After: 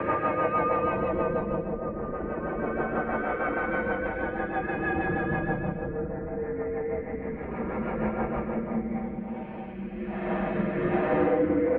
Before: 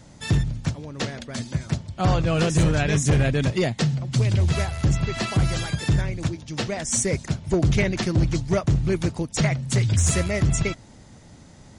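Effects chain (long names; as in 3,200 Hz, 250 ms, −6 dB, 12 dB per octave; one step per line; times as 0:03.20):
treble cut that deepens with the level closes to 400 Hz, closed at −15.5 dBFS
parametric band 750 Hz +13.5 dB 2 octaves
comb filter 6.8 ms
downward compressor, threshold −20 dBFS, peak gain reduction 13 dB
extreme stretch with random phases 7.9×, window 0.25 s, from 0:05.23
delay with a band-pass on its return 275 ms, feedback 79%, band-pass 500 Hz, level −10 dB
on a send at −4 dB: convolution reverb RT60 1.6 s, pre-delay 5 ms
on the sum: rotating-speaker cabinet horn 6.3 Hz, later 1.2 Hz, at 0:08.40
single-sideband voice off tune −110 Hz 250–2,400 Hz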